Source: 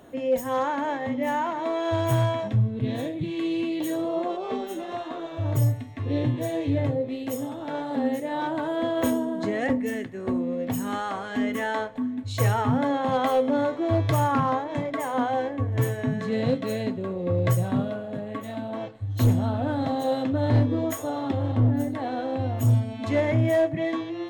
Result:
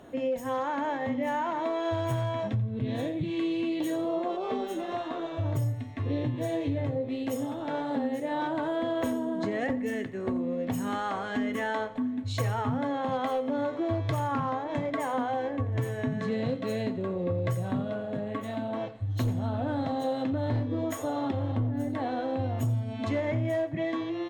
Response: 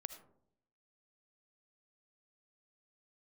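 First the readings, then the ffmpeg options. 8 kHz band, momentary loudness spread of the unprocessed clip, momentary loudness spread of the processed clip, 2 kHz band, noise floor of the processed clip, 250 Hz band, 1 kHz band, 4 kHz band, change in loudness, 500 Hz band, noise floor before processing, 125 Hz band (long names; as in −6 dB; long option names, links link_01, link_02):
−7.0 dB, 8 LU, 3 LU, −3.5 dB, −37 dBFS, −4.0 dB, −4.0 dB, −4.0 dB, −4.5 dB, −4.0 dB, −36 dBFS, −6.0 dB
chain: -af "highshelf=frequency=10000:gain=-10,acompressor=threshold=-26dB:ratio=6,aecho=1:1:87|174|261:0.126|0.0378|0.0113"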